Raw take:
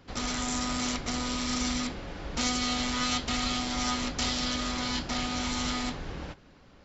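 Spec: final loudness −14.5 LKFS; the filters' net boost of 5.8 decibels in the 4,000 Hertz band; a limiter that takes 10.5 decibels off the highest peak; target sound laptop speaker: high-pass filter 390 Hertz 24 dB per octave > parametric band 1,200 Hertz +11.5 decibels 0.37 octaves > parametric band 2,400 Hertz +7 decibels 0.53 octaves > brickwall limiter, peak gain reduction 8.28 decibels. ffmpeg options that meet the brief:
ffmpeg -i in.wav -af "equalizer=frequency=4000:width_type=o:gain=5.5,alimiter=limit=-23dB:level=0:latency=1,highpass=frequency=390:width=0.5412,highpass=frequency=390:width=1.3066,equalizer=frequency=1200:width_type=o:width=0.37:gain=11.5,equalizer=frequency=2400:width_type=o:width=0.53:gain=7,volume=19.5dB,alimiter=limit=-6.5dB:level=0:latency=1" out.wav

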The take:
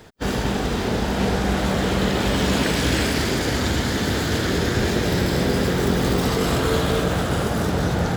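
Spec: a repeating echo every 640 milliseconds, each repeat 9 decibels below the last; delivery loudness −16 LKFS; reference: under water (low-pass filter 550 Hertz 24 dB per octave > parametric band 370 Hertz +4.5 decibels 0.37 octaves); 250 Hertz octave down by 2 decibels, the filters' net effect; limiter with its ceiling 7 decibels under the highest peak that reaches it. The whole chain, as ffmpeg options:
ffmpeg -i in.wav -af "equalizer=frequency=250:width_type=o:gain=-4,alimiter=limit=-15.5dB:level=0:latency=1,lowpass=frequency=550:width=0.5412,lowpass=frequency=550:width=1.3066,equalizer=frequency=370:width_type=o:width=0.37:gain=4.5,aecho=1:1:640|1280|1920|2560:0.355|0.124|0.0435|0.0152,volume=10dB" out.wav

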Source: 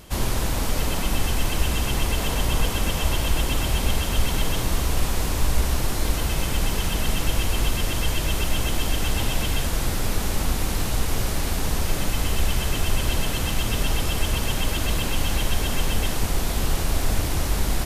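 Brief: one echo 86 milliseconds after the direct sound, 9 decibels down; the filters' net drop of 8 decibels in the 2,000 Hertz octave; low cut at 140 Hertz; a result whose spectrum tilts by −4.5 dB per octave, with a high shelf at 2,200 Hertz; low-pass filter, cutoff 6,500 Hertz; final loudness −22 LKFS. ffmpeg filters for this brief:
ffmpeg -i in.wav -af "highpass=140,lowpass=6500,equalizer=frequency=2000:width_type=o:gain=-8.5,highshelf=frequency=2200:gain=-4,aecho=1:1:86:0.355,volume=9dB" out.wav

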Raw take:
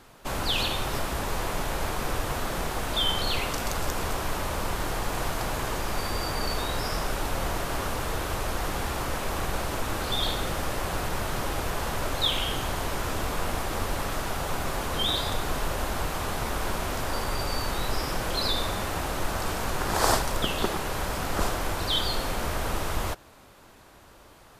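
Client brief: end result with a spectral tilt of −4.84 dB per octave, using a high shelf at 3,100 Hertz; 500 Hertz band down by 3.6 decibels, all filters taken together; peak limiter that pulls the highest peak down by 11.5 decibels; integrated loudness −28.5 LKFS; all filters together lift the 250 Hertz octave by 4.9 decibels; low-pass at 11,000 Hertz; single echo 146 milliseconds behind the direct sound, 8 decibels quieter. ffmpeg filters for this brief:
ffmpeg -i in.wav -af "lowpass=11000,equalizer=frequency=250:width_type=o:gain=8.5,equalizer=frequency=500:width_type=o:gain=-7,highshelf=frequency=3100:gain=-7,alimiter=limit=-19dB:level=0:latency=1,aecho=1:1:146:0.398,volume=2.5dB" out.wav

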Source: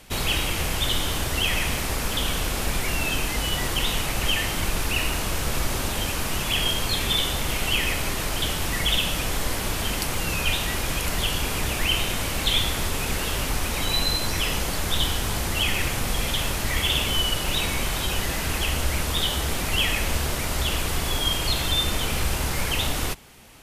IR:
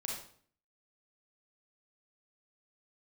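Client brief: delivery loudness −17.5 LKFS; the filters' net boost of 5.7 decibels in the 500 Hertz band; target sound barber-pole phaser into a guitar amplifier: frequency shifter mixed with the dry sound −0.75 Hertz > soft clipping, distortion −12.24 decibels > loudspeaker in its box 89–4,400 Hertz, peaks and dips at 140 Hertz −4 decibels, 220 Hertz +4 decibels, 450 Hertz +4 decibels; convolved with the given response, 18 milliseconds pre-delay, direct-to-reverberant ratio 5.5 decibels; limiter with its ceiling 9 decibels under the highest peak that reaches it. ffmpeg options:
-filter_complex "[0:a]equalizer=frequency=500:width_type=o:gain=4.5,alimiter=limit=-16dB:level=0:latency=1,asplit=2[link_01][link_02];[1:a]atrim=start_sample=2205,adelay=18[link_03];[link_02][link_03]afir=irnorm=-1:irlink=0,volume=-6dB[link_04];[link_01][link_04]amix=inputs=2:normalize=0,asplit=2[link_05][link_06];[link_06]afreqshift=-0.75[link_07];[link_05][link_07]amix=inputs=2:normalize=1,asoftclip=threshold=-26dB,highpass=89,equalizer=frequency=140:width_type=q:width=4:gain=-4,equalizer=frequency=220:width_type=q:width=4:gain=4,equalizer=frequency=450:width_type=q:width=4:gain=4,lowpass=frequency=4400:width=0.5412,lowpass=frequency=4400:width=1.3066,volume=15dB"

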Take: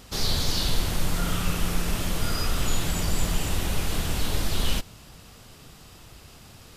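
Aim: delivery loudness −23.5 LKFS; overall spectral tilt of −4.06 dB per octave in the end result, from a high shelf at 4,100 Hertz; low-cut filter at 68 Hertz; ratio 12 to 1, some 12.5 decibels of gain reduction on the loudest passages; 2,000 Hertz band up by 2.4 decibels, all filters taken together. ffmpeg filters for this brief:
ffmpeg -i in.wav -af "highpass=68,equalizer=frequency=2000:width_type=o:gain=5,highshelf=frequency=4100:gain=-7.5,acompressor=threshold=-38dB:ratio=12,volume=19dB" out.wav

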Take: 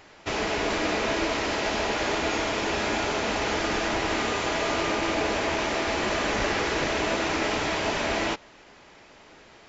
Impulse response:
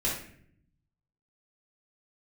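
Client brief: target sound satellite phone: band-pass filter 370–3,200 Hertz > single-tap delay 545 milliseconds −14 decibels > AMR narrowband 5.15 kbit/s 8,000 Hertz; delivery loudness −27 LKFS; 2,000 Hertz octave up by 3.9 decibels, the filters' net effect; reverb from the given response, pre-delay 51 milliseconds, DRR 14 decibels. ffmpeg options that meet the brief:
-filter_complex "[0:a]equalizer=frequency=2000:width_type=o:gain=5.5,asplit=2[link_01][link_02];[1:a]atrim=start_sample=2205,adelay=51[link_03];[link_02][link_03]afir=irnorm=-1:irlink=0,volume=-21.5dB[link_04];[link_01][link_04]amix=inputs=2:normalize=0,highpass=370,lowpass=3200,aecho=1:1:545:0.2,volume=3dB" -ar 8000 -c:a libopencore_amrnb -b:a 5150

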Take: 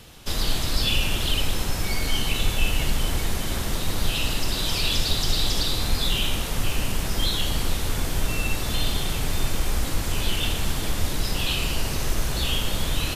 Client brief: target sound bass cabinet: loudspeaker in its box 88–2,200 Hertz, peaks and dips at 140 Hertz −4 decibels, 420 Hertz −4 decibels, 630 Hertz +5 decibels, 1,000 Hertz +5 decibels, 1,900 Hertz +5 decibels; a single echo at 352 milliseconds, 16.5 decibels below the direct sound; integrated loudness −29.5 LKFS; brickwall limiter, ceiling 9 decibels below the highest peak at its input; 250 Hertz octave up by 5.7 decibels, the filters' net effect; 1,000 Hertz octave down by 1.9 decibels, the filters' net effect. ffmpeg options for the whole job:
ffmpeg -i in.wav -af "equalizer=frequency=250:width_type=o:gain=8.5,equalizer=frequency=1000:width_type=o:gain=-7,alimiter=limit=-16.5dB:level=0:latency=1,highpass=frequency=88:width=0.5412,highpass=frequency=88:width=1.3066,equalizer=frequency=140:width_type=q:width=4:gain=-4,equalizer=frequency=420:width_type=q:width=4:gain=-4,equalizer=frequency=630:width_type=q:width=4:gain=5,equalizer=frequency=1000:width_type=q:width=4:gain=5,equalizer=frequency=1900:width_type=q:width=4:gain=5,lowpass=frequency=2200:width=0.5412,lowpass=frequency=2200:width=1.3066,aecho=1:1:352:0.15,volume=3dB" out.wav

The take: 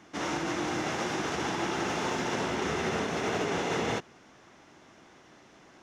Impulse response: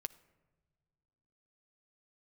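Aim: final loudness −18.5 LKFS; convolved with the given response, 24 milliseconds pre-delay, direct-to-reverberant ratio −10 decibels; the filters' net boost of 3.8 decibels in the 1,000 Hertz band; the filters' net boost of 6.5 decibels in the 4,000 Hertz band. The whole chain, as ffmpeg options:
-filter_complex "[0:a]equalizer=frequency=1000:width_type=o:gain=4.5,equalizer=frequency=4000:width_type=o:gain=8.5,asplit=2[link_01][link_02];[1:a]atrim=start_sample=2205,adelay=24[link_03];[link_02][link_03]afir=irnorm=-1:irlink=0,volume=12.5dB[link_04];[link_01][link_04]amix=inputs=2:normalize=0,volume=-0.5dB"

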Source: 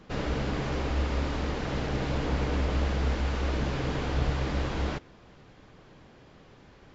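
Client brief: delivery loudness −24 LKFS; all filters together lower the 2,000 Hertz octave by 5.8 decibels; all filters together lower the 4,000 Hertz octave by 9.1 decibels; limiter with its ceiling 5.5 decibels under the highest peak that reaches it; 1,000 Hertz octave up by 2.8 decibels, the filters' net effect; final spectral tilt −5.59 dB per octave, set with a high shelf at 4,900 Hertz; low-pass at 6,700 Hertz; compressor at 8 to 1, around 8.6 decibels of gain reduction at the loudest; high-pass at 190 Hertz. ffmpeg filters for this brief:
ffmpeg -i in.wav -af "highpass=190,lowpass=6700,equalizer=frequency=1000:width_type=o:gain=6,equalizer=frequency=2000:width_type=o:gain=-8,equalizer=frequency=4000:width_type=o:gain=-7,highshelf=frequency=4900:gain=-4.5,acompressor=threshold=-38dB:ratio=8,volume=20.5dB,alimiter=limit=-14.5dB:level=0:latency=1" out.wav

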